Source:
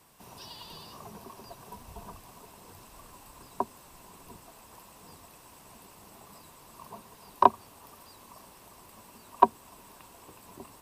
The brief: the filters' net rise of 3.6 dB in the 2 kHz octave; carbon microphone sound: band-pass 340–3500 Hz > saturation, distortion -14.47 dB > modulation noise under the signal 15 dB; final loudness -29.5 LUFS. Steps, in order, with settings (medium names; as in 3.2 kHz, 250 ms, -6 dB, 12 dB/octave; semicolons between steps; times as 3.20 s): band-pass 340–3500 Hz; peaking EQ 2 kHz +5.5 dB; saturation -6.5 dBFS; modulation noise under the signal 15 dB